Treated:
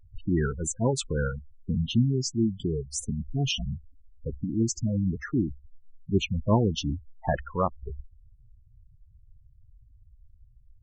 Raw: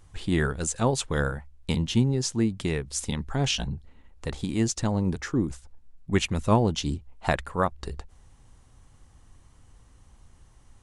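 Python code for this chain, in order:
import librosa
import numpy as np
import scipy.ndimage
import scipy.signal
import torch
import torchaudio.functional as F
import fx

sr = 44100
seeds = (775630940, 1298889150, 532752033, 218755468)

y = fx.spec_gate(x, sr, threshold_db=-10, keep='strong')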